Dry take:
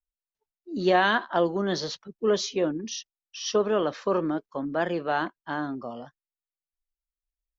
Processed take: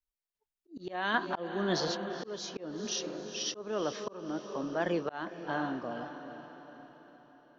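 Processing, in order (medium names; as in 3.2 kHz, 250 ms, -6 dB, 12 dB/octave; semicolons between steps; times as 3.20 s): random-step tremolo; echo that smears into a reverb 463 ms, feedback 50%, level -11 dB; slow attack 360 ms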